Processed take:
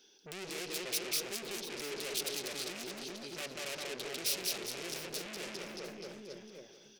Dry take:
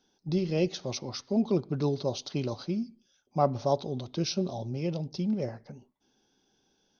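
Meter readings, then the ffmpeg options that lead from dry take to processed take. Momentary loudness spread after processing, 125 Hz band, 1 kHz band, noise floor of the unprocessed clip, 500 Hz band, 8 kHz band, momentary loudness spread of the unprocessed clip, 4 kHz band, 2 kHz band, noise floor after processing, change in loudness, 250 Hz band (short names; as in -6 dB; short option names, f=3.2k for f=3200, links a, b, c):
13 LU, -23.0 dB, -13.0 dB, -73 dBFS, -11.5 dB, n/a, 8 LU, +2.5 dB, +6.5 dB, -59 dBFS, -7.0 dB, -17.0 dB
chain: -filter_complex "[0:a]lowpass=f=3.3k:p=1,acompressor=threshold=-28dB:ratio=6,bandreject=f=730:w=12,asplit=2[a][b];[b]aecho=0:1:190|399|628.9|881.8|1160:0.631|0.398|0.251|0.158|0.1[c];[a][c]amix=inputs=2:normalize=0,aeval=exprs='(tanh(112*val(0)+0.65)-tanh(0.65))/112':c=same,aeval=exprs='0.0141*sin(PI/2*1.58*val(0)/0.0141)':c=same,lowshelf=f=250:g=-7,asplit=2[d][e];[e]aecho=0:1:706|1412:0.168|0.0302[f];[d][f]amix=inputs=2:normalize=0,crystalizer=i=9:c=0,equalizer=f=100:t=o:w=0.67:g=-9,equalizer=f=400:t=o:w=0.67:g=11,equalizer=f=1k:t=o:w=0.67:g=-4,equalizer=f=2.5k:t=o:w=0.67:g=6,volume=-6.5dB"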